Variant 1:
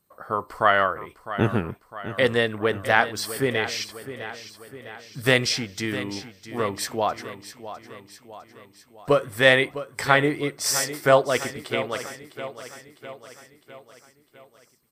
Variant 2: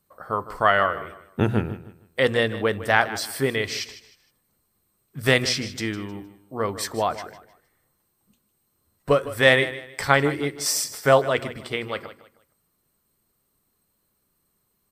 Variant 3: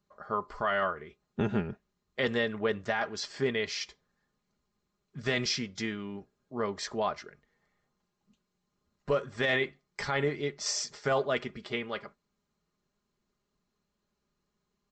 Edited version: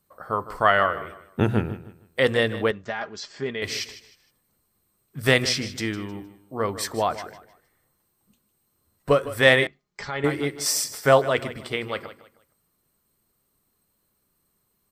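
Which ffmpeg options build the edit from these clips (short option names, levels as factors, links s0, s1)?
-filter_complex "[2:a]asplit=2[s0][s1];[1:a]asplit=3[s2][s3][s4];[s2]atrim=end=2.712[s5];[s0]atrim=start=2.708:end=3.622[s6];[s3]atrim=start=3.618:end=9.672[s7];[s1]atrim=start=9.668:end=10.242[s8];[s4]atrim=start=10.238[s9];[s5][s6]acrossfade=d=0.004:c1=hsin:c2=hsin[s10];[s10][s7]acrossfade=d=0.004:c1=hsin:c2=hsin[s11];[s11][s8]acrossfade=d=0.004:c1=hsin:c2=hsin[s12];[s12][s9]acrossfade=d=0.004:c1=hsin:c2=hsin"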